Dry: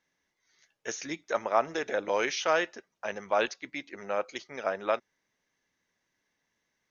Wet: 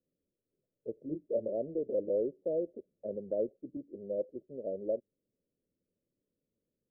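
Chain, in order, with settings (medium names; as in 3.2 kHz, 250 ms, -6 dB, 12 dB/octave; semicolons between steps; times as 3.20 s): steep low-pass 580 Hz 72 dB/octave; 0.94–1.53 s: doubling 26 ms -4 dB; 2.45–3.77 s: three bands compressed up and down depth 40%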